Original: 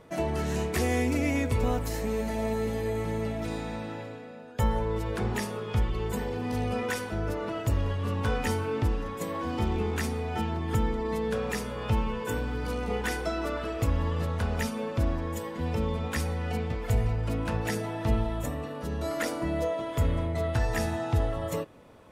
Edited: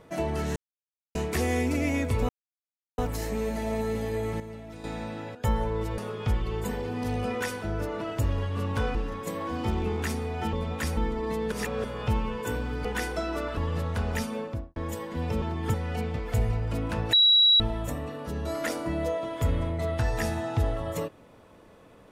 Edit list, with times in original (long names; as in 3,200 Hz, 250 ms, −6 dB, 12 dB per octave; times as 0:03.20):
0:00.56: splice in silence 0.59 s
0:01.70: splice in silence 0.69 s
0:03.12–0:03.56: clip gain −10 dB
0:04.07–0:04.50: remove
0:05.13–0:05.46: remove
0:08.43–0:08.89: remove
0:10.47–0:10.79: swap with 0:15.86–0:16.30
0:11.34–0:11.66: reverse
0:12.67–0:12.94: remove
0:13.66–0:14.01: remove
0:14.79–0:15.20: fade out and dull
0:17.69–0:18.16: beep over 3,890 Hz −15.5 dBFS